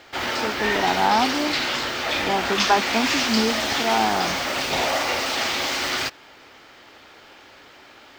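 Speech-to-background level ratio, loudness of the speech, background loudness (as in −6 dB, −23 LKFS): −1.5 dB, −24.5 LKFS, −23.0 LKFS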